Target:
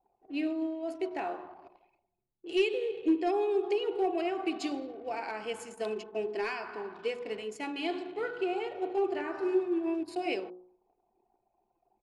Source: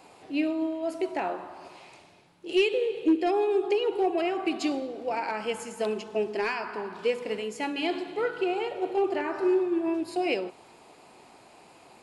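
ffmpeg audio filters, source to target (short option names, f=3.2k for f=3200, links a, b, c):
-af "anlmdn=0.1,aecho=1:1:2.7:0.31,bandreject=f=60.55:t=h:w=4,bandreject=f=121.1:t=h:w=4,bandreject=f=181.65:t=h:w=4,bandreject=f=242.2:t=h:w=4,bandreject=f=302.75:t=h:w=4,bandreject=f=363.3:t=h:w=4,bandreject=f=423.85:t=h:w=4,bandreject=f=484.4:t=h:w=4,bandreject=f=544.95:t=h:w=4,bandreject=f=605.5:t=h:w=4,bandreject=f=666.05:t=h:w=4,bandreject=f=726.6:t=h:w=4,bandreject=f=787.15:t=h:w=4,bandreject=f=847.7:t=h:w=4,bandreject=f=908.25:t=h:w=4,bandreject=f=968.8:t=h:w=4,bandreject=f=1.02935k:t=h:w=4,bandreject=f=1.0899k:t=h:w=4,bandreject=f=1.15045k:t=h:w=4,bandreject=f=1.211k:t=h:w=4,bandreject=f=1.27155k:t=h:w=4,volume=-5.5dB"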